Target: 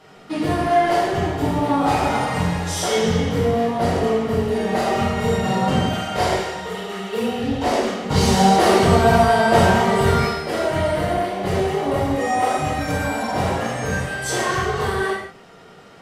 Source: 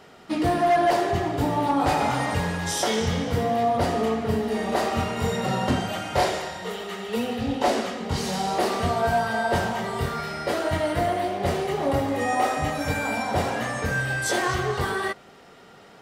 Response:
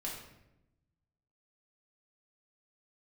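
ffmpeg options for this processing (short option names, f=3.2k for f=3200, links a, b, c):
-filter_complex "[0:a]asettb=1/sr,asplit=3[a][b][c];[a]atrim=end=8.104[d];[b]atrim=start=8.1:end=10.28,asetpts=PTS-STARTPTS,afade=t=in:d=0.004:c=qsin,afade=t=out:st=2.176:d=0.004:c=qsin,acontrast=66[e];[c]atrim=start=10.276[f];[d][e]acrossfade=d=0.004:c1=hsin:c2=qsin[g];[g][f]acrossfade=d=0.004:c1=qsin:c2=hsin[h];[1:a]atrim=start_sample=2205,afade=t=out:st=0.17:d=0.01,atrim=end_sample=7938,asetrate=27783,aresample=44100[i];[h][i]afir=irnorm=-1:irlink=0"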